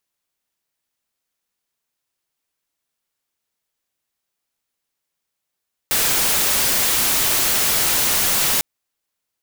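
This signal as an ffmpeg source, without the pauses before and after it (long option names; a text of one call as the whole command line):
ffmpeg -f lavfi -i "anoisesrc=color=white:amplitude=0.218:duration=2.7:sample_rate=44100:seed=1" out.wav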